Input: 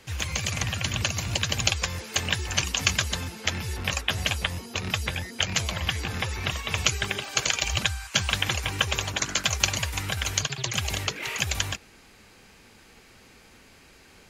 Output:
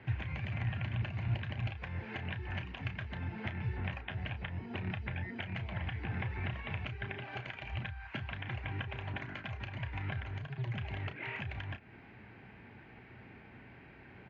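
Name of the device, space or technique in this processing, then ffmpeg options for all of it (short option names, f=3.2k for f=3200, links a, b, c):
bass amplifier: -filter_complex "[0:a]acompressor=threshold=-35dB:ratio=6,highpass=69,equalizer=f=120:t=q:w=4:g=8,equalizer=f=500:t=q:w=4:g=-8,equalizer=f=1.2k:t=q:w=4:g=-9,lowpass=f=2.2k:w=0.5412,lowpass=f=2.2k:w=1.3066,asplit=2[a][b];[b]adelay=33,volume=-10dB[c];[a][c]amix=inputs=2:normalize=0,asettb=1/sr,asplit=3[d][e][f];[d]atrim=end=10.204[g];[e]atrim=start=10.2:end=10.78,asetpts=PTS-STARTPTS,afade=t=in:d=0.004:c=qsin,afade=t=out:st=0.576:d=0.004:c=qsin,equalizer=f=2.7k:w=0.71:g=-4.5[h];[f]atrim=start=10.776[i];[g][h]acrossfade=d=0.004:c1=hsin:c2=qsin[j];[j][i]acrossfade=d=0.004:c1=qsin:c2=hsin,volume=1.5dB"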